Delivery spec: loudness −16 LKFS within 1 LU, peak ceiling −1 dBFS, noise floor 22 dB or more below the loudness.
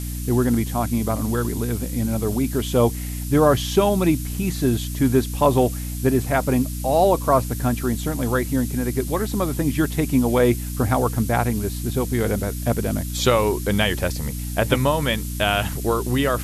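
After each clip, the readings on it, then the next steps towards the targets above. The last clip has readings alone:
mains hum 60 Hz; hum harmonics up to 300 Hz; level of the hum −26 dBFS; background noise floor −29 dBFS; target noise floor −44 dBFS; integrated loudness −21.5 LKFS; sample peak −2.5 dBFS; target loudness −16.0 LKFS
→ mains-hum notches 60/120/180/240/300 Hz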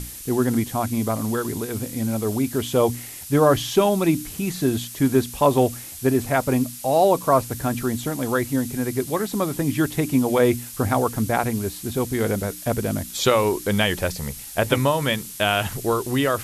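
mains hum none found; background noise floor −37 dBFS; target noise floor −45 dBFS
→ noise reduction from a noise print 8 dB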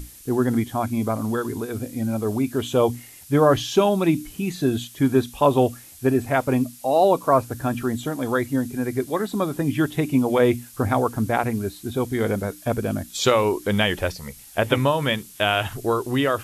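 background noise floor −45 dBFS; integrated loudness −22.5 LKFS; sample peak −4.5 dBFS; target loudness −16.0 LKFS
→ level +6.5 dB
brickwall limiter −1 dBFS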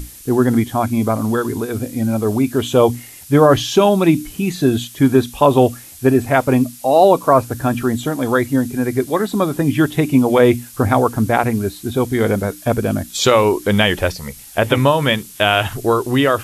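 integrated loudness −16.5 LKFS; sample peak −1.0 dBFS; background noise floor −39 dBFS

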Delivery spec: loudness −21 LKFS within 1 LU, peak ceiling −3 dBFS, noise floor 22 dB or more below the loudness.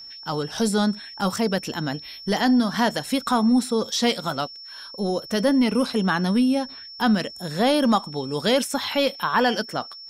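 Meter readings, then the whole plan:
interfering tone 5,400 Hz; level of the tone −38 dBFS; integrated loudness −23.0 LKFS; sample peak −8.5 dBFS; target loudness −21.0 LKFS
→ notch filter 5,400 Hz, Q 30
level +2 dB

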